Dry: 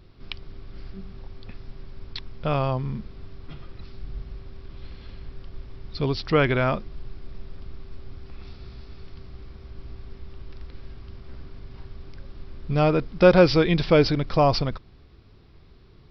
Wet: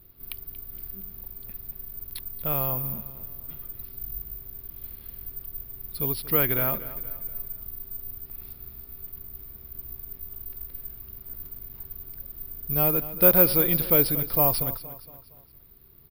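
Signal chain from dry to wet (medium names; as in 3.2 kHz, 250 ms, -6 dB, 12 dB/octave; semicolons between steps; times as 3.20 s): 8.53–9.33 s: treble shelf 5.3 kHz -10 dB; feedback delay 233 ms, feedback 46%, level -15.5 dB; careless resampling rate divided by 3×, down filtered, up zero stuff; clicks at 2.11/11.46/13.09 s, -22 dBFS; trim -7.5 dB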